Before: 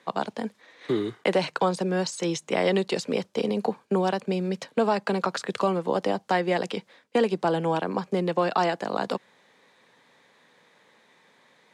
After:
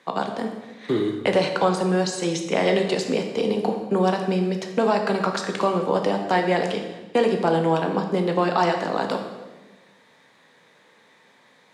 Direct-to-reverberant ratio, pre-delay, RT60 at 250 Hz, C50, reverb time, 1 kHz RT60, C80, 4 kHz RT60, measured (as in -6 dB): 3.5 dB, 9 ms, 1.5 s, 6.5 dB, 1.2 s, 1.1 s, 8.5 dB, 1.0 s